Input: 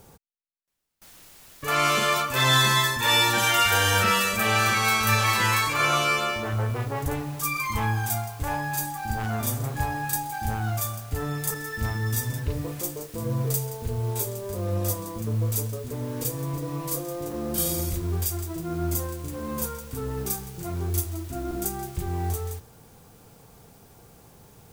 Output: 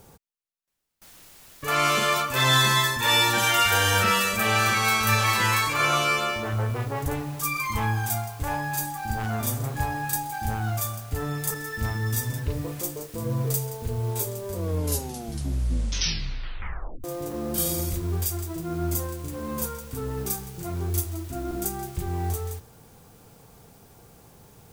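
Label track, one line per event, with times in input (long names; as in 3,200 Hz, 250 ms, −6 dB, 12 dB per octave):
14.490000	14.490000	tape stop 2.55 s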